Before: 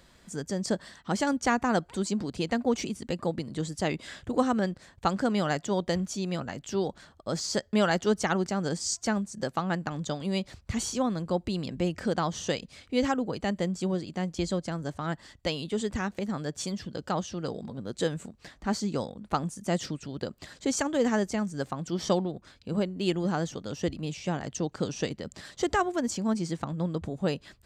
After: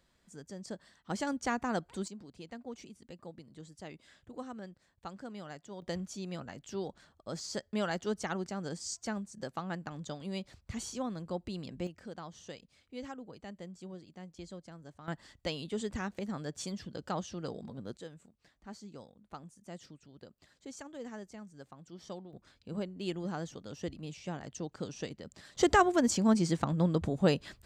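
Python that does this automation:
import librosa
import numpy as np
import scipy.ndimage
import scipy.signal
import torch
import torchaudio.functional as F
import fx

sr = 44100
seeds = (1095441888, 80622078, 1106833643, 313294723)

y = fx.gain(x, sr, db=fx.steps((0.0, -14.0), (1.1, -7.5), (2.08, -18.0), (5.82, -9.0), (11.87, -17.0), (15.08, -6.0), (17.97, -18.5), (22.33, -9.0), (25.55, 2.0)))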